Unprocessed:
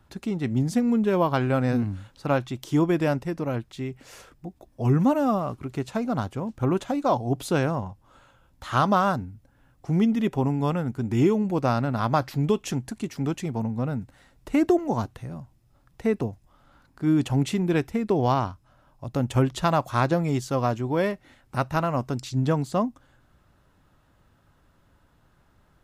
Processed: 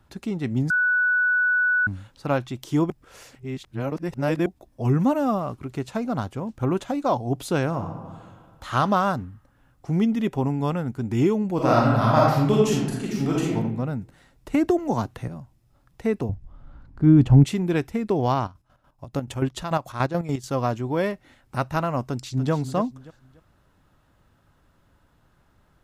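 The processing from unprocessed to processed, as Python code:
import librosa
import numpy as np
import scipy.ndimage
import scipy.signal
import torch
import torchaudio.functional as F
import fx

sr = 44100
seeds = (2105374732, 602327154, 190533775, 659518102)

y = fx.reverb_throw(x, sr, start_s=7.67, length_s=1.04, rt60_s=1.8, drr_db=4.5)
y = fx.reverb_throw(y, sr, start_s=11.55, length_s=2.0, rt60_s=0.91, drr_db=-4.5)
y = fx.band_squash(y, sr, depth_pct=70, at=(14.54, 15.28))
y = fx.riaa(y, sr, side='playback', at=(16.29, 17.44))
y = fx.chopper(y, sr, hz=6.9, depth_pct=65, duty_pct=45, at=(18.44, 20.49), fade=0.02)
y = fx.echo_throw(y, sr, start_s=22.05, length_s=0.47, ms=290, feedback_pct=30, wet_db=-11.0)
y = fx.edit(y, sr, fx.bleep(start_s=0.7, length_s=1.17, hz=1480.0, db=-17.5),
    fx.reverse_span(start_s=2.9, length_s=1.56), tone=tone)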